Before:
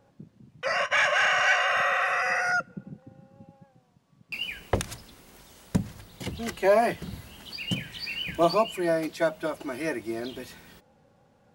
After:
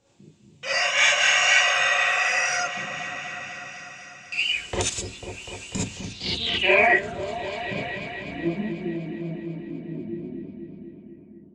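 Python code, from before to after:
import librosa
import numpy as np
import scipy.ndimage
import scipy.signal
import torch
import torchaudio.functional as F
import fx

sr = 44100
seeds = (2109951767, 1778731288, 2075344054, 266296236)

y = fx.high_shelf_res(x, sr, hz=2000.0, db=7.5, q=1.5)
y = fx.filter_sweep_lowpass(y, sr, from_hz=7500.0, to_hz=200.0, start_s=5.87, end_s=8.55, q=5.8)
y = fx.air_absorb(y, sr, metres=59.0)
y = fx.echo_opening(y, sr, ms=247, hz=400, octaves=1, feedback_pct=70, wet_db=-6)
y = fx.rev_gated(y, sr, seeds[0], gate_ms=90, shape='rising', drr_db=-7.5)
y = F.gain(torch.from_numpy(y), -7.5).numpy()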